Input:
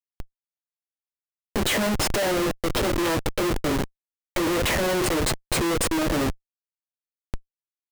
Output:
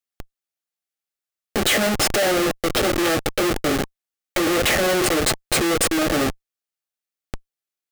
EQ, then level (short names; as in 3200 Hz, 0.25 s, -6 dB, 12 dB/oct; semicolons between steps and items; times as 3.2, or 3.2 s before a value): Butterworth band-stop 980 Hz, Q 6.1; low shelf 210 Hz -8 dB; +5.5 dB